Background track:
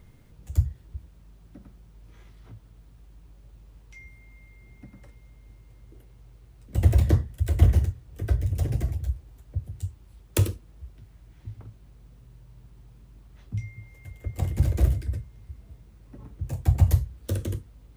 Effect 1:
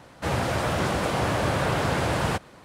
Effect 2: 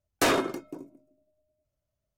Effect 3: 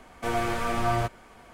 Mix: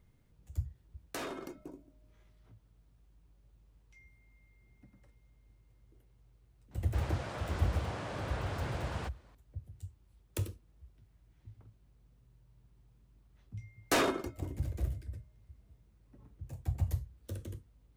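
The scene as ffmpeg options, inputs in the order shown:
ffmpeg -i bed.wav -i cue0.wav -i cue1.wav -filter_complex "[2:a]asplit=2[link_01][link_02];[0:a]volume=-13.5dB[link_03];[link_01]acompressor=threshold=-31dB:ratio=6:attack=3.2:release=140:knee=1:detection=peak[link_04];[1:a]lowpass=7900[link_05];[link_04]atrim=end=2.17,asetpts=PTS-STARTPTS,volume=-7dB,afade=type=in:duration=0.004:curve=hsin,afade=type=out:start_time=2.166:duration=0.004:curve=hsin,adelay=930[link_06];[link_05]atrim=end=2.64,asetpts=PTS-STARTPTS,volume=-15.5dB,afade=type=in:duration=0.004:curve=hsin,afade=type=out:start_time=2.636:duration=0.004:curve=hsin,adelay=6710[link_07];[link_02]atrim=end=2.17,asetpts=PTS-STARTPTS,volume=-5dB,afade=type=in:duration=0.004:curve=hsin,afade=type=out:start_time=2.166:duration=0.004:curve=hsin,adelay=13700[link_08];[link_03][link_06][link_07][link_08]amix=inputs=4:normalize=0" out.wav

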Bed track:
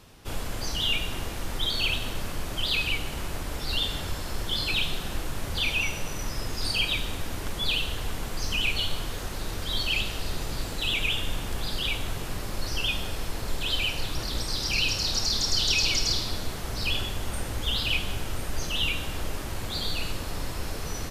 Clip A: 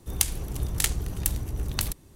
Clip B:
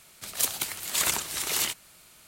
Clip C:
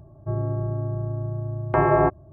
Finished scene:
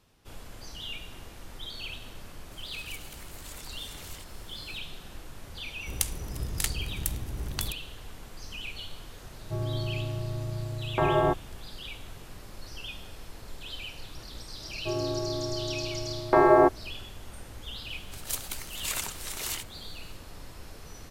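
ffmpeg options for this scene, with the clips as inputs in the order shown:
ffmpeg -i bed.wav -i cue0.wav -i cue1.wav -i cue2.wav -filter_complex "[2:a]asplit=2[link_01][link_02];[3:a]asplit=2[link_03][link_04];[0:a]volume=-12.5dB[link_05];[link_01]acompressor=threshold=-49dB:ratio=2.5:attack=1.7:release=97:knee=1:detection=peak[link_06];[link_04]lowshelf=frequency=220:width_type=q:width=1.5:gain=-9.5[link_07];[link_06]atrim=end=2.27,asetpts=PTS-STARTPTS,volume=-2.5dB,afade=type=in:duration=0.004:curve=hsin,afade=type=out:start_time=2.266:duration=0.004:curve=hsin,adelay=2510[link_08];[1:a]atrim=end=2.15,asetpts=PTS-STARTPTS,volume=-4.5dB,afade=type=in:duration=0.004:curve=hsin,afade=type=out:start_time=2.146:duration=0.004:curve=hsin,adelay=5800[link_09];[link_03]atrim=end=2.32,asetpts=PTS-STARTPTS,volume=-5.5dB,afade=type=in:duration=0.004:curve=hsin,afade=type=out:start_time=2.316:duration=0.004:curve=hsin,adelay=9240[link_10];[link_07]atrim=end=2.32,asetpts=PTS-STARTPTS,volume=-0.5dB,afade=type=in:duration=0.004:curve=hsin,afade=type=out:start_time=2.316:duration=0.004:curve=hsin,adelay=14590[link_11];[link_02]atrim=end=2.27,asetpts=PTS-STARTPTS,volume=-7dB,afade=type=in:duration=0.004:curve=hsin,afade=type=out:start_time=2.266:duration=0.004:curve=hsin,adelay=17900[link_12];[link_05][link_08][link_09][link_10][link_11][link_12]amix=inputs=6:normalize=0" out.wav

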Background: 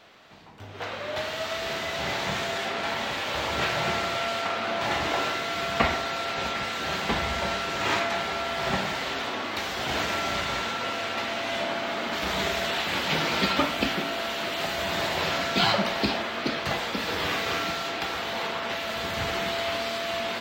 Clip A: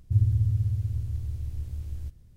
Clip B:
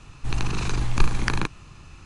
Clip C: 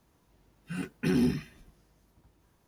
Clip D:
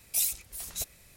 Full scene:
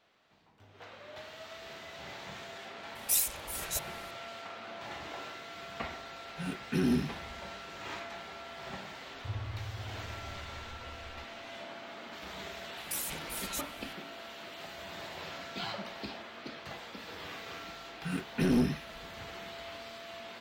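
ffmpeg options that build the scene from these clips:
ffmpeg -i bed.wav -i cue0.wav -i cue1.wav -i cue2.wav -i cue3.wav -filter_complex "[4:a]asplit=2[link_01][link_02];[3:a]asplit=2[link_03][link_04];[0:a]volume=-16dB[link_05];[link_02]acompressor=threshold=-31dB:ratio=6:attack=3.2:release=140:knee=1:detection=peak[link_06];[link_04]aeval=exprs='clip(val(0),-1,0.0596)':channel_layout=same[link_07];[link_01]atrim=end=1.16,asetpts=PTS-STARTPTS,volume=-0.5dB,afade=type=in:duration=0.004:curve=hsin,afade=type=out:start_time=1.156:duration=0.004:curve=hsin,adelay=2950[link_08];[link_03]atrim=end=2.67,asetpts=PTS-STARTPTS,volume=-2.5dB,afade=type=in:duration=0.004:curve=hsin,afade=type=out:start_time=2.666:duration=0.004:curve=hsin,adelay=250929S[link_09];[1:a]atrim=end=2.36,asetpts=PTS-STARTPTS,volume=-16.5dB,afade=type=in:duration=0.004:curve=hsin,afade=type=out:start_time=2.356:duration=0.004:curve=hsin,adelay=403074S[link_10];[link_06]atrim=end=1.16,asetpts=PTS-STARTPTS,volume=-1.5dB,afade=type=in:duration=0.004:curve=hsin,afade=type=out:start_time=1.156:duration=0.004:curve=hsin,adelay=12770[link_11];[link_07]atrim=end=2.67,asetpts=PTS-STARTPTS,afade=type=in:duration=0.004:curve=hsin,afade=type=out:start_time=2.666:duration=0.004:curve=hsin,adelay=17350[link_12];[link_05][link_08][link_09][link_10][link_11][link_12]amix=inputs=6:normalize=0" out.wav

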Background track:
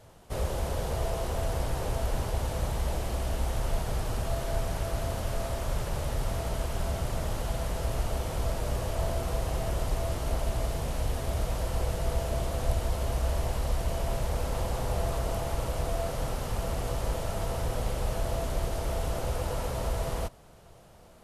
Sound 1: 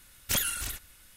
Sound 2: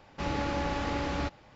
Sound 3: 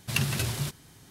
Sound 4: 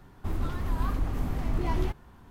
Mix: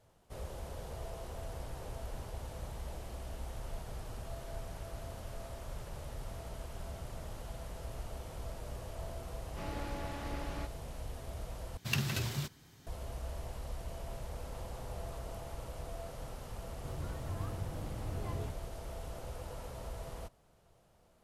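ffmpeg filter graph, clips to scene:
ffmpeg -i bed.wav -i cue0.wav -i cue1.wav -i cue2.wav -i cue3.wav -filter_complex "[0:a]volume=-13dB[link_01];[3:a]equalizer=frequency=9900:width_type=o:width=0.46:gain=-9.5[link_02];[4:a]afreqshift=57[link_03];[link_01]asplit=2[link_04][link_05];[link_04]atrim=end=11.774[link_06];[link_02]atrim=end=1.1,asetpts=PTS-STARTPTS,volume=-5.5dB[link_07];[link_05]atrim=start=12.866[link_08];[2:a]atrim=end=1.55,asetpts=PTS-STARTPTS,volume=-11.5dB,afade=type=in:duration=0.004:curve=hsin,afade=type=out:start_time=1.546:duration=0.004:curve=hsin,adelay=413658S[link_09];[link_03]atrim=end=2.3,asetpts=PTS-STARTPTS,volume=-14dB,afade=type=in:duration=0.004:curve=hsin,afade=type=out:start_time=2.296:duration=0.004:curve=hsin,adelay=16590[link_10];[link_06][link_07]acrossfade=duration=0.004:curve1=hsin:curve2=hsin[link_11];[link_11][link_08]acrossfade=duration=0.004:curve1=hsin:curve2=hsin[link_12];[link_12][link_09][link_10]amix=inputs=3:normalize=0" out.wav

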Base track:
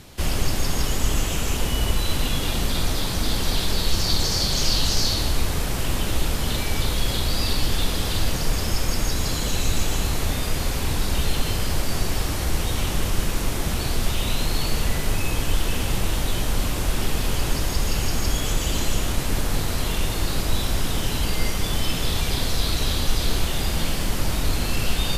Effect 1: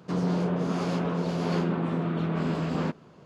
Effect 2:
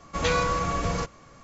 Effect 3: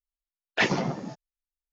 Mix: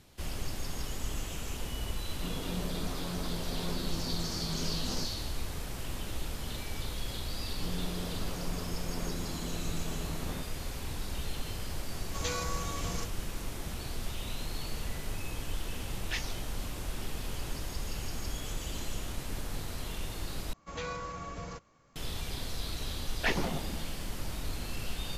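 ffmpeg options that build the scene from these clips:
ffmpeg -i bed.wav -i cue0.wav -i cue1.wav -i cue2.wav -filter_complex "[1:a]asplit=2[link_01][link_02];[2:a]asplit=2[link_03][link_04];[3:a]asplit=2[link_05][link_06];[0:a]volume=-14dB[link_07];[link_01]flanger=delay=15.5:depth=4.3:speed=1.8[link_08];[link_03]bass=frequency=250:gain=2,treble=frequency=4000:gain=13[link_09];[link_05]aderivative[link_10];[link_07]asplit=2[link_11][link_12];[link_11]atrim=end=20.534[link_13];[link_04]atrim=end=1.43,asetpts=PTS-STARTPTS,volume=-14dB[link_14];[link_12]atrim=start=21.956[link_15];[link_08]atrim=end=3.25,asetpts=PTS-STARTPTS,volume=-9dB,afade=type=in:duration=0.004:curve=hsin,afade=type=out:start_time=3.246:duration=0.004:curve=hsin,adelay=2130[link_16];[link_02]atrim=end=3.25,asetpts=PTS-STARTPTS,volume=-13.5dB,afade=type=in:duration=0.004:curve=hsin,afade=type=out:start_time=3.246:duration=0.004:curve=hsin,adelay=7510[link_17];[link_09]atrim=end=1.43,asetpts=PTS-STARTPTS,volume=-13dB,afade=type=in:duration=0.004:curve=hsin,afade=type=out:start_time=1.426:duration=0.004:curve=hsin,adelay=12000[link_18];[link_10]atrim=end=1.72,asetpts=PTS-STARTPTS,volume=-2.5dB,afade=type=in:duration=0.004:curve=hsin,afade=type=out:start_time=1.716:duration=0.004:curve=hsin,adelay=15530[link_19];[link_06]atrim=end=1.72,asetpts=PTS-STARTPTS,volume=-7dB,afade=type=in:duration=0.004:curve=hsin,afade=type=out:start_time=1.716:duration=0.004:curve=hsin,adelay=22660[link_20];[link_13][link_14]acrossfade=duration=0.004:curve1=hsin:curve2=hsin[link_21];[link_21][link_15]acrossfade=duration=0.004:curve1=hsin:curve2=hsin[link_22];[link_22][link_16][link_17][link_18][link_19][link_20]amix=inputs=6:normalize=0" out.wav

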